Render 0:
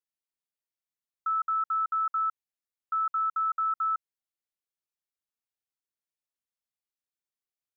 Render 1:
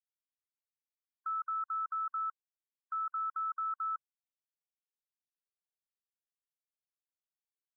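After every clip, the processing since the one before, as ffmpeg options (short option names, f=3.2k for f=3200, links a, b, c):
-af "afftfilt=real='re*gte(hypot(re,im),0.00708)':imag='im*gte(hypot(re,im),0.00708)':win_size=1024:overlap=0.75,alimiter=level_in=7.5dB:limit=-24dB:level=0:latency=1:release=47,volume=-7.5dB"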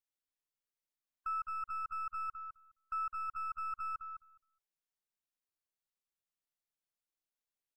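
-filter_complex "[0:a]aeval=exprs='if(lt(val(0),0),0.708*val(0),val(0))':c=same,asplit=2[a][b];[b]adelay=208,lowpass=f=1.2k:p=1,volume=-5dB,asplit=2[c][d];[d]adelay=208,lowpass=f=1.2k:p=1,volume=0.16,asplit=2[e][f];[f]adelay=208,lowpass=f=1.2k:p=1,volume=0.16[g];[c][e][g]amix=inputs=3:normalize=0[h];[a][h]amix=inputs=2:normalize=0"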